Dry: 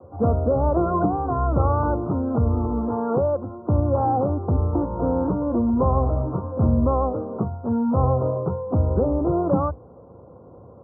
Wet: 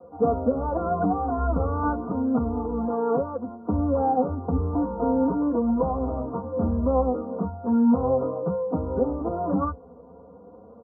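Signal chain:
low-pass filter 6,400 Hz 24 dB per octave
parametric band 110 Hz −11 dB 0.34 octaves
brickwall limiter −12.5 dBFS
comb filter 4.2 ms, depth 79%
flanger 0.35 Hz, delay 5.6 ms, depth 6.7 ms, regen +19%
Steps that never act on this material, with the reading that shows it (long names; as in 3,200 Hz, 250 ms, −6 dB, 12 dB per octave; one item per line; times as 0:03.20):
low-pass filter 6,400 Hz: nothing at its input above 1,100 Hz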